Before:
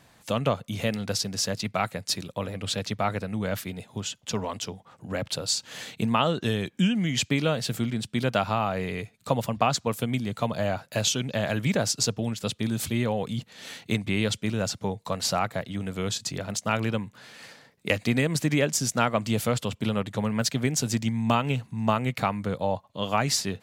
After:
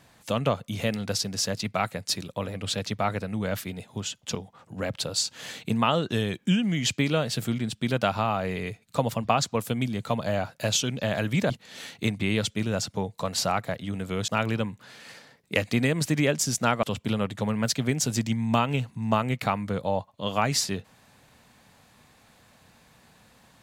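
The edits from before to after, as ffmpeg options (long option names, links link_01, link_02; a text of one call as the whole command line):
ffmpeg -i in.wav -filter_complex "[0:a]asplit=5[link_01][link_02][link_03][link_04][link_05];[link_01]atrim=end=4.352[link_06];[link_02]atrim=start=4.668:end=11.822[link_07];[link_03]atrim=start=13.368:end=16.152[link_08];[link_04]atrim=start=16.618:end=19.172[link_09];[link_05]atrim=start=19.588[link_10];[link_06][link_07]acrossfade=duration=0.004:curve1=hsin:curve2=hsin[link_11];[link_11][link_08]acrossfade=duration=0.004:curve1=hsin:curve2=hsin[link_12];[link_12][link_09]acrossfade=duration=0.004:curve1=hsin:curve2=hsin[link_13];[link_13][link_10]acrossfade=duration=0.004:curve1=hsin:curve2=hsin" out.wav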